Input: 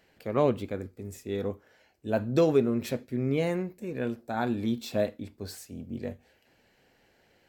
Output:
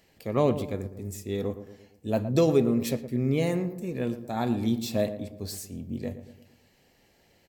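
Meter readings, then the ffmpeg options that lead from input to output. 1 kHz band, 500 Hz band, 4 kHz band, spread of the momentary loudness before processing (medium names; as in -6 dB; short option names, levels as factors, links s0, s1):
0.0 dB, +0.5 dB, +3.0 dB, 16 LU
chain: -filter_complex "[0:a]bass=f=250:g=4,treble=f=4000:g=7,bandreject=f=1500:w=6.5,asplit=2[s0][s1];[s1]adelay=115,lowpass=f=1300:p=1,volume=0.282,asplit=2[s2][s3];[s3]adelay=115,lowpass=f=1300:p=1,volume=0.5,asplit=2[s4][s5];[s5]adelay=115,lowpass=f=1300:p=1,volume=0.5,asplit=2[s6][s7];[s7]adelay=115,lowpass=f=1300:p=1,volume=0.5,asplit=2[s8][s9];[s9]adelay=115,lowpass=f=1300:p=1,volume=0.5[s10];[s2][s4][s6][s8][s10]amix=inputs=5:normalize=0[s11];[s0][s11]amix=inputs=2:normalize=0"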